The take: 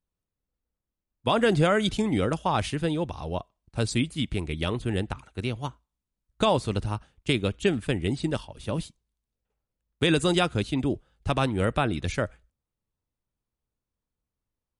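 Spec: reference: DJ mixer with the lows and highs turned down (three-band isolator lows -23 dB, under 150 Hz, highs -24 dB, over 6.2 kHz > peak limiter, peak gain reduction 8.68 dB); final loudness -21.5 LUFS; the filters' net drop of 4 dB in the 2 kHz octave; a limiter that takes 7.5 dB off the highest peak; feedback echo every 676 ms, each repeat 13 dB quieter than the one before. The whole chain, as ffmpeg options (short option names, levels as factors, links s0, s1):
-filter_complex "[0:a]equalizer=f=2000:t=o:g=-5.5,alimiter=limit=0.126:level=0:latency=1,acrossover=split=150 6200:gain=0.0708 1 0.0631[s0][s1][s2];[s0][s1][s2]amix=inputs=3:normalize=0,aecho=1:1:676|1352|2028:0.224|0.0493|0.0108,volume=5.62,alimiter=limit=0.299:level=0:latency=1"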